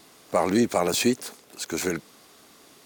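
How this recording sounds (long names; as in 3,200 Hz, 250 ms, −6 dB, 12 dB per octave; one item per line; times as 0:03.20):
background noise floor −54 dBFS
spectral slope −3.5 dB per octave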